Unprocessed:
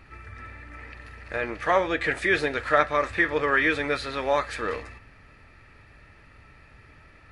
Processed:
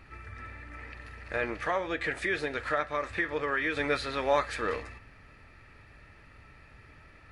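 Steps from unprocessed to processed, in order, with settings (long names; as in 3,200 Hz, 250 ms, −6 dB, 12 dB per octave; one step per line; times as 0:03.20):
0:01.54–0:03.77: downward compressor 2 to 1, threshold −29 dBFS, peak gain reduction 8 dB
level −2 dB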